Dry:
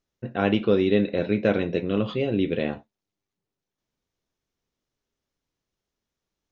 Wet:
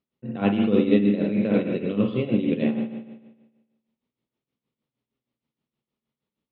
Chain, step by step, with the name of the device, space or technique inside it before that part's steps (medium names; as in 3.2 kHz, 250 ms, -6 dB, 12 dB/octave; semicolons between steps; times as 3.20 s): combo amplifier with spring reverb and tremolo (spring tank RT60 1.2 s, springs 49 ms, chirp 65 ms, DRR 2.5 dB; tremolo 6.4 Hz, depth 69%; cabinet simulation 82–4000 Hz, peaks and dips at 88 Hz -9 dB, 130 Hz +6 dB, 230 Hz +9 dB, 700 Hz -3 dB, 1.6 kHz -8 dB)